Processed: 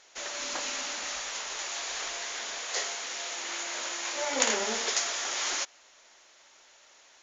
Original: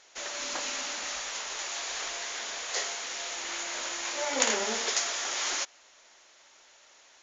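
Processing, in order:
0:02.59–0:04.14: high-pass filter 98 Hz → 230 Hz 12 dB per octave

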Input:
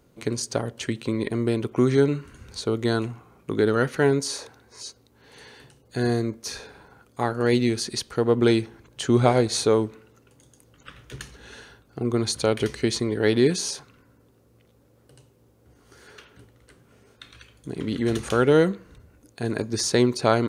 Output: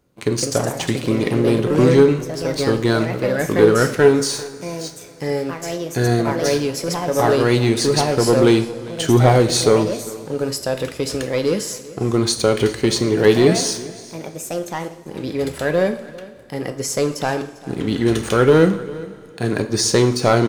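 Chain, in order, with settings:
leveller curve on the samples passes 2
delay with pitch and tempo change per echo 203 ms, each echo +3 semitones, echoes 2, each echo −6 dB
on a send: single-tap delay 398 ms −20 dB
on the sum: coupled-rooms reverb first 0.54 s, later 3.6 s, from −18 dB, DRR 7 dB
level −1 dB

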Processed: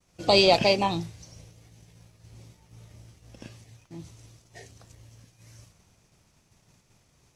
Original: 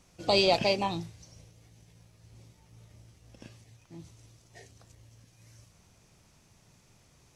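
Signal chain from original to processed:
downward expander −55 dBFS
level +5 dB

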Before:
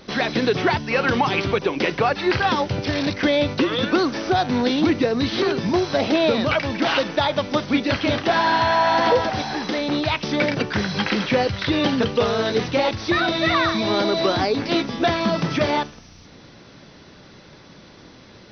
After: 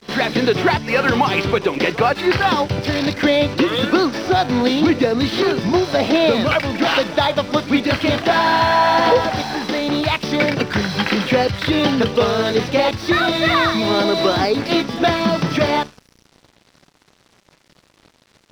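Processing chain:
dead-zone distortion −42 dBFS
echo ahead of the sound 63 ms −18 dB
level +4 dB

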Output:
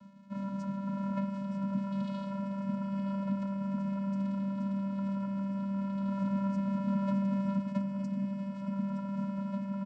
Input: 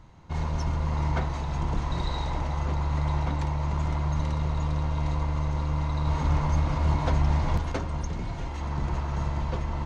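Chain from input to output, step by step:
reversed playback
upward compression, threshold −35 dBFS
reversed playback
bit reduction 9 bits
channel vocoder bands 8, square 196 Hz
hollow resonant body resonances 230/1,000 Hz, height 6 dB
on a send: single-tap delay 918 ms −11 dB
on the sum: level −5 dB

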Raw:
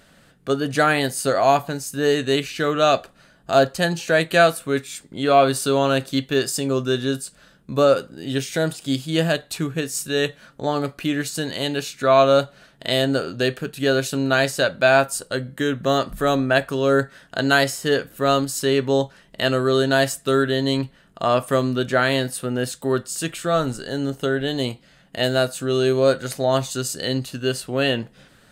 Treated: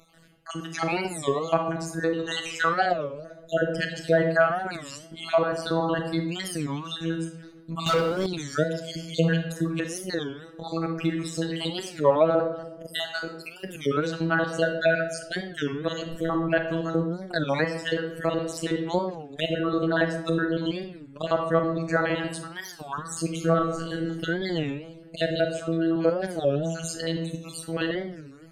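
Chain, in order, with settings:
time-frequency cells dropped at random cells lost 55%
0:02.19–0:02.94: graphic EQ with 10 bands 250 Hz −11 dB, 1,000 Hz +9 dB, 8,000 Hz +9 dB
treble cut that deepens with the level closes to 1,700 Hz, closed at −16.5 dBFS
phases set to zero 164 Hz
0:23.44–0:24.19: double-tracking delay 36 ms −5 dB
feedback echo with a low-pass in the loop 125 ms, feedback 59%, low-pass 880 Hz, level −14 dB
convolution reverb RT60 0.90 s, pre-delay 30 ms, DRR 5 dB
0:07.86–0:08.28: leveller curve on the samples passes 3
wow of a warped record 33 1/3 rpm, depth 250 cents

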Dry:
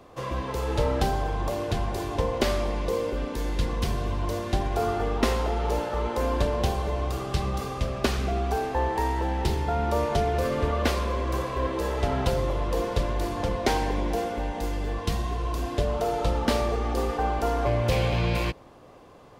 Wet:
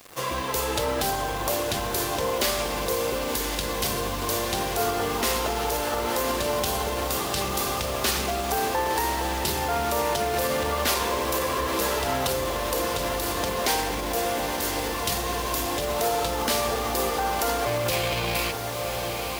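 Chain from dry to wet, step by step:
in parallel at −3 dB: hard clipping −23 dBFS, distortion −12 dB
on the sum: high-shelf EQ 11,000 Hz +10.5 dB
feedback delay with all-pass diffusion 1,036 ms, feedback 75%, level −9.5 dB
brickwall limiter −15 dBFS, peak gain reduction 6.5 dB
high-pass filter 46 Hz
spectral tilt +2.5 dB per octave
bit reduction 7 bits

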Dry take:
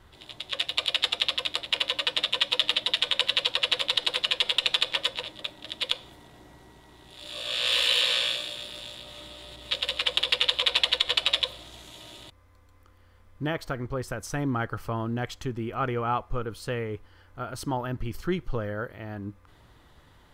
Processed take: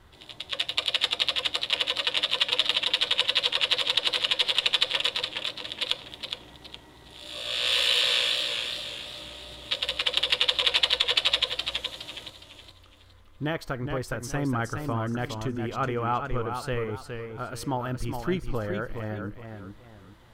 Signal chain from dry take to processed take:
feedback echo with a swinging delay time 417 ms, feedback 32%, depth 77 cents, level −6.5 dB

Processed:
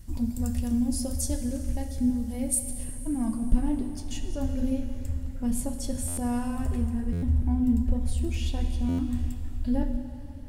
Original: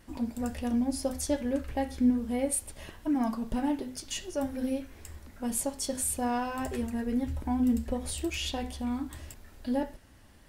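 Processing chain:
bass and treble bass +14 dB, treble +14 dB, from 0:02.83 treble +1 dB
dense smooth reverb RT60 3.1 s, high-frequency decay 0.95×, DRR 7.5 dB
speech leveller within 4 dB 2 s
low-shelf EQ 110 Hz +9.5 dB
buffer that repeats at 0:06.07/0:07.12/0:08.88, samples 512, times 8
level −8.5 dB

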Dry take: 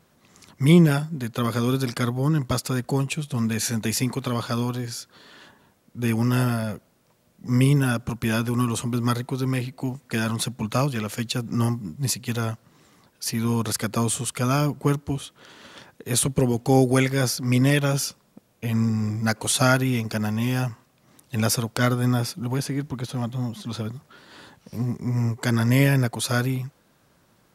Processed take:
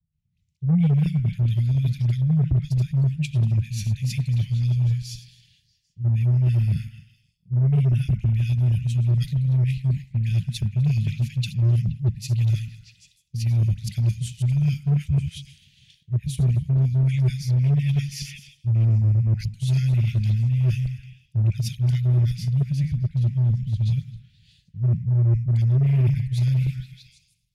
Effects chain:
feedback delay that plays each chunk backwards 132 ms, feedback 46%, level −13.5 dB
elliptic band-stop filter 160–2,400 Hz, stop band 40 dB
all-pass dispersion highs, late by 128 ms, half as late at 660 Hz
on a send: echo through a band-pass that steps 159 ms, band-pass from 900 Hz, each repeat 0.7 octaves, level −6.5 dB
on the sum: dynamic equaliser 8,200 Hz, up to −4 dB, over −47 dBFS, Q 2.7
reversed playback
downward compressor 5 to 1, threshold −35 dBFS, peak gain reduction 18 dB
reversed playback
RIAA equalisation playback
harmonic generator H 4 −39 dB, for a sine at −21 dBFS
multiband upward and downward expander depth 100%
level +5.5 dB

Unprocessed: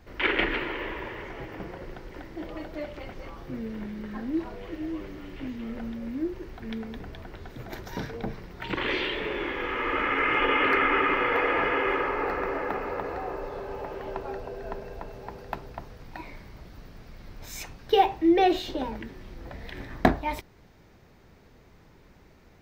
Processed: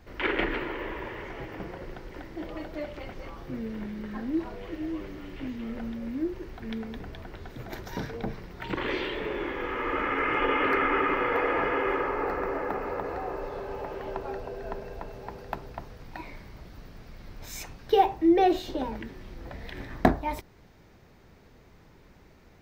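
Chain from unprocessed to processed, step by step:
dynamic equaliser 2,900 Hz, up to −6 dB, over −42 dBFS, Q 0.83

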